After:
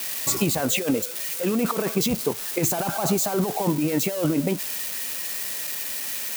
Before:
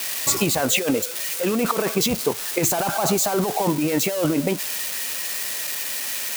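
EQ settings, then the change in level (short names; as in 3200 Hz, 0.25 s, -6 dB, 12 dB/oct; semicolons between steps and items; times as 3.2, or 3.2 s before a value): bell 170 Hz +5.5 dB 2.3 oct; high shelf 11000 Hz +4.5 dB; -5.0 dB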